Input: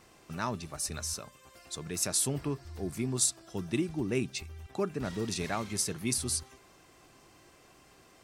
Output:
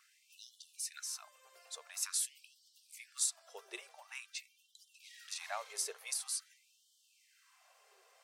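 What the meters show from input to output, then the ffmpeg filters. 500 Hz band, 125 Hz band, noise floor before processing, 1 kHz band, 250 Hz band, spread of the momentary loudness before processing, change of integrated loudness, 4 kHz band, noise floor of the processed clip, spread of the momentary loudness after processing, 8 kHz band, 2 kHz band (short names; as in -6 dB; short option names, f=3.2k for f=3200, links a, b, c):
-18.0 dB, under -40 dB, -60 dBFS, -10.0 dB, under -30 dB, 12 LU, -7.0 dB, -6.0 dB, -72 dBFS, 20 LU, -6.0 dB, -7.0 dB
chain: -af "afftfilt=real='re*gte(b*sr/1024,380*pow(2900/380,0.5+0.5*sin(2*PI*0.47*pts/sr)))':imag='im*gte(b*sr/1024,380*pow(2900/380,0.5+0.5*sin(2*PI*0.47*pts/sr)))':win_size=1024:overlap=0.75,volume=-6dB"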